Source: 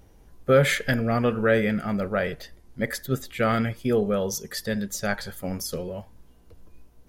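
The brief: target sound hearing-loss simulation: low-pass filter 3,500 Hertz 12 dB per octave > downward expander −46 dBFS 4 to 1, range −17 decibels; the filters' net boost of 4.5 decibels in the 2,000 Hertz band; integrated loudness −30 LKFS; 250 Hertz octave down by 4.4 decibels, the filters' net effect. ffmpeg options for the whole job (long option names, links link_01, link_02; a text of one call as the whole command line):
ffmpeg -i in.wav -af "lowpass=3500,equalizer=frequency=250:width_type=o:gain=-5.5,equalizer=frequency=2000:width_type=o:gain=6,agate=range=-17dB:threshold=-46dB:ratio=4,volume=-4.5dB" out.wav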